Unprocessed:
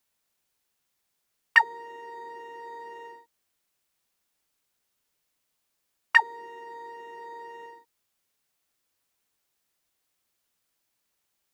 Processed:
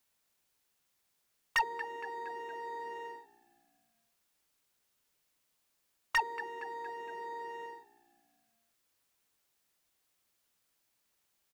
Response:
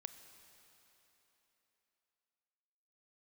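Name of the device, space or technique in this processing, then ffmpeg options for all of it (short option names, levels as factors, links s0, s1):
saturation between pre-emphasis and de-emphasis: -filter_complex "[0:a]asplit=5[s0][s1][s2][s3][s4];[s1]adelay=232,afreqshift=-60,volume=0.0668[s5];[s2]adelay=464,afreqshift=-120,volume=0.0359[s6];[s3]adelay=696,afreqshift=-180,volume=0.0195[s7];[s4]adelay=928,afreqshift=-240,volume=0.0105[s8];[s0][s5][s6][s7][s8]amix=inputs=5:normalize=0,highshelf=f=6000:g=9.5,asoftclip=type=tanh:threshold=0.0668,highshelf=f=6000:g=-9.5"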